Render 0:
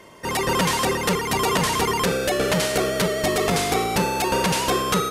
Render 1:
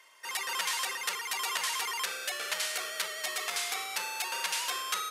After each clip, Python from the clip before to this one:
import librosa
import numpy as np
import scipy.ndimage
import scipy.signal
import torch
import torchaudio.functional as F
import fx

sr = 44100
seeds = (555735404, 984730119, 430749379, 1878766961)

y = scipy.signal.sosfilt(scipy.signal.butter(2, 1400.0, 'highpass', fs=sr, output='sos'), x)
y = y * 10.0 ** (-6.5 / 20.0)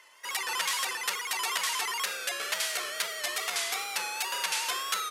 y = fx.wow_flutter(x, sr, seeds[0], rate_hz=2.1, depth_cents=77.0)
y = y * 10.0 ** (2.0 / 20.0)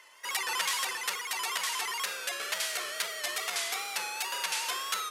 y = x + 10.0 ** (-16.5 / 20.0) * np.pad(x, (int(289 * sr / 1000.0), 0))[:len(x)]
y = fx.rider(y, sr, range_db=10, speed_s=2.0)
y = y * 10.0 ** (-2.0 / 20.0)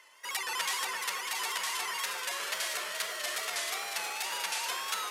y = fx.echo_alternate(x, sr, ms=338, hz=2000.0, feedback_pct=72, wet_db=-3.5)
y = y * 10.0 ** (-2.5 / 20.0)